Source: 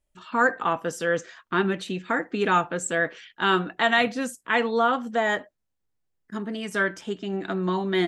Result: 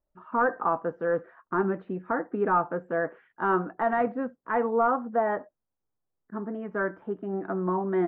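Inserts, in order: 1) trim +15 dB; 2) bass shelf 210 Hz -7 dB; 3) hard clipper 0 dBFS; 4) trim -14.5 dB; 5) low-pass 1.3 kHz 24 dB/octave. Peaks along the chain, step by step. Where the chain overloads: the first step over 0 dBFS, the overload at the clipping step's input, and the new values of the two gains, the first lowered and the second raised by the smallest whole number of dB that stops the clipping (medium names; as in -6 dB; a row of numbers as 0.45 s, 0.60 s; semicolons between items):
+6.5 dBFS, +6.5 dBFS, 0.0 dBFS, -14.5 dBFS, -13.5 dBFS; step 1, 6.5 dB; step 1 +8 dB, step 4 -7.5 dB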